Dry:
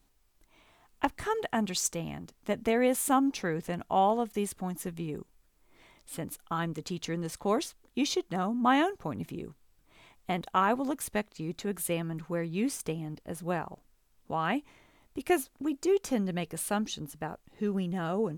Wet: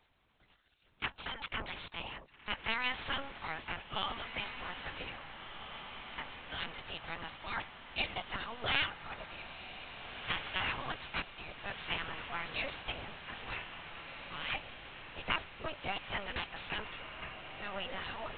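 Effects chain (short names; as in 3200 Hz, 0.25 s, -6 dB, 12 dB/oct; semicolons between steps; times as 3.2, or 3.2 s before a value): spectral gate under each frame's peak -20 dB weak; LPC vocoder at 8 kHz pitch kept; diffused feedback echo 1.759 s, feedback 60%, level -8.5 dB; gain +8 dB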